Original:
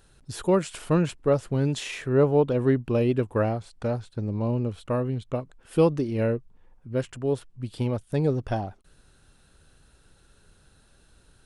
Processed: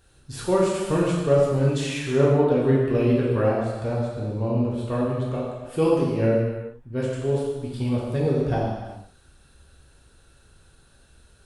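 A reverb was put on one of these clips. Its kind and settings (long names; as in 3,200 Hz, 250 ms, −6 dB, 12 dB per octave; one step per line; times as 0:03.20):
reverb whose tail is shaped and stops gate 450 ms falling, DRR −5.5 dB
level −3.5 dB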